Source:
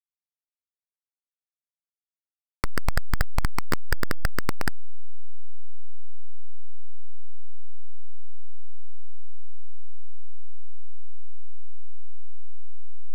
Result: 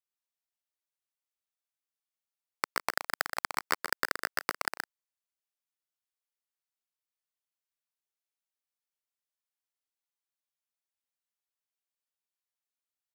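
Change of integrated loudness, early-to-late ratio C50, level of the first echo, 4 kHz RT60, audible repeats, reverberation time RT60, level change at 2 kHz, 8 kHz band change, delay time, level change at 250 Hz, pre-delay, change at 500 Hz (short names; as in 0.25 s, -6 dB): -2.0 dB, none, -6.5 dB, none, 2, none, +1.0 dB, n/a, 0.123 s, -13.0 dB, none, -3.5 dB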